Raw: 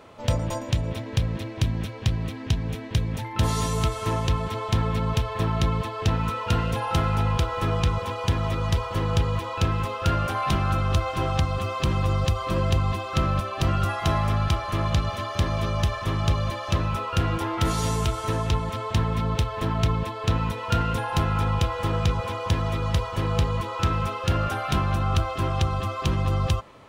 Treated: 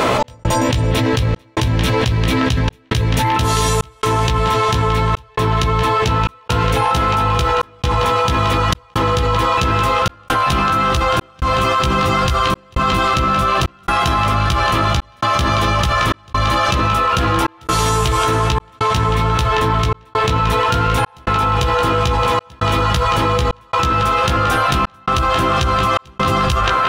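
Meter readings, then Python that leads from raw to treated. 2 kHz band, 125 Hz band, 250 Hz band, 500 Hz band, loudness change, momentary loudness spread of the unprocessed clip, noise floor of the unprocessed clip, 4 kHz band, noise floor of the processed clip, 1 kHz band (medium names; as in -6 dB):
+13.0 dB, +4.5 dB, +7.5 dB, +10.5 dB, +9.0 dB, 3 LU, -34 dBFS, +11.5 dB, -46 dBFS, +13.5 dB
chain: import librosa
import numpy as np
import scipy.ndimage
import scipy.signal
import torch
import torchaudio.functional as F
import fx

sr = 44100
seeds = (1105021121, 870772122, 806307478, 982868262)

p1 = fx.rider(x, sr, range_db=10, speed_s=0.5)
p2 = fx.low_shelf(p1, sr, hz=410.0, db=-3.5)
p3 = fx.hum_notches(p2, sr, base_hz=50, count=4)
p4 = fx.doubler(p3, sr, ms=16.0, db=-4.5)
p5 = p4 + fx.echo_banded(p4, sr, ms=1065, feedback_pct=67, hz=1400.0, wet_db=-6, dry=0)
p6 = fx.step_gate(p5, sr, bpm=67, pattern='x.xxxx.xxxx', floor_db=-60.0, edge_ms=4.5)
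p7 = fx.env_flatten(p6, sr, amount_pct=100)
y = p7 * 10.0 ** (3.0 / 20.0)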